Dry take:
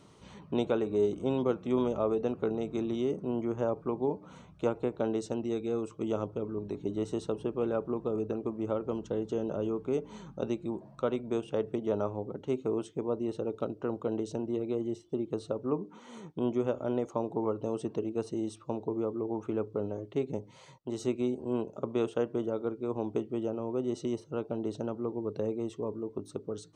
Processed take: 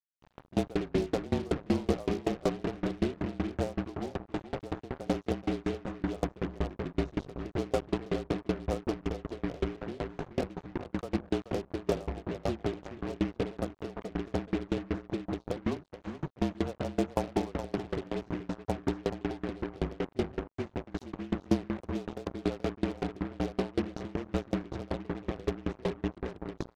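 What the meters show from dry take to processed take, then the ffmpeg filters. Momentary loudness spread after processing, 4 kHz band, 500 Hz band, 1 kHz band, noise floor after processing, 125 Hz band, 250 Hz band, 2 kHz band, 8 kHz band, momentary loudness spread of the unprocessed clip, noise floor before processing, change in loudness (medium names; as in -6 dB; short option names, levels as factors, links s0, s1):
7 LU, +5.0 dB, -3.5 dB, +1.5 dB, -61 dBFS, +3.5 dB, 0.0 dB, +7.0 dB, no reading, 6 LU, -55 dBFS, -1.5 dB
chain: -filter_complex "[0:a]aemphasis=mode=reproduction:type=bsi,asplit=2[s0][s1];[s1]acompressor=threshold=0.01:ratio=6,volume=1[s2];[s0][s2]amix=inputs=2:normalize=0,equalizer=f=740:w=4.7:g=11.5,aresample=16000,aresample=44100,highpass=f=63:p=1,asplit=2[s3][s4];[s4]adelay=428,lowpass=f=4800:p=1,volume=0.631,asplit=2[s5][s6];[s6]adelay=428,lowpass=f=4800:p=1,volume=0.38,asplit=2[s7][s8];[s8]adelay=428,lowpass=f=4800:p=1,volume=0.38,asplit=2[s9][s10];[s10]adelay=428,lowpass=f=4800:p=1,volume=0.38,asplit=2[s11][s12];[s12]adelay=428,lowpass=f=4800:p=1,volume=0.38[s13];[s5][s7][s9][s11][s13]amix=inputs=5:normalize=0[s14];[s3][s14]amix=inputs=2:normalize=0,afreqshift=-39,acrusher=bits=4:mix=0:aa=0.5,aeval=exprs='val(0)*pow(10,-28*if(lt(mod(5.3*n/s,1),2*abs(5.3)/1000),1-mod(5.3*n/s,1)/(2*abs(5.3)/1000),(mod(5.3*n/s,1)-2*abs(5.3)/1000)/(1-2*abs(5.3)/1000))/20)':c=same"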